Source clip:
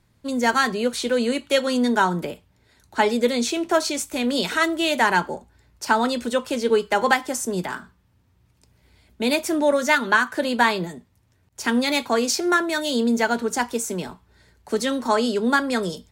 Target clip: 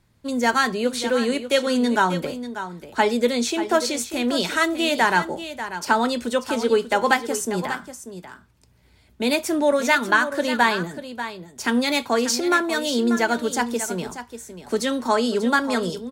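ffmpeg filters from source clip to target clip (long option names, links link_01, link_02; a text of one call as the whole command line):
ffmpeg -i in.wav -af "aecho=1:1:590:0.266" out.wav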